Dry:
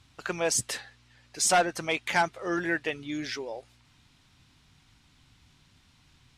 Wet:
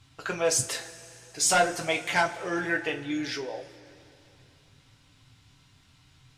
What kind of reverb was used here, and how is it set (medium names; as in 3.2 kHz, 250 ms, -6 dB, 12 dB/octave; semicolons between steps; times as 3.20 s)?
two-slope reverb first 0.23 s, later 3.1 s, from -22 dB, DRR 1.5 dB; trim -1 dB